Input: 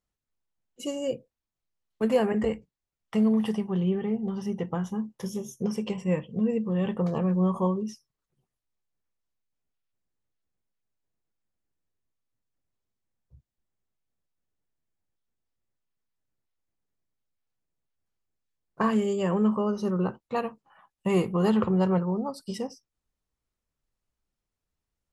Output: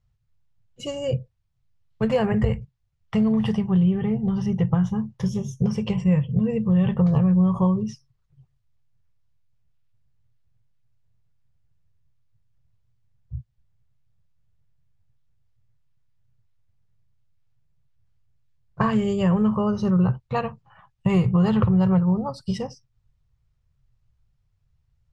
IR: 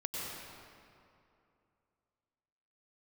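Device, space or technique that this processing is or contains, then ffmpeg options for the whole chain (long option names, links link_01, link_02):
jukebox: -af "lowpass=5500,lowshelf=frequency=180:width_type=q:width=3:gain=13.5,acompressor=threshold=-21dB:ratio=4,volume=5dB"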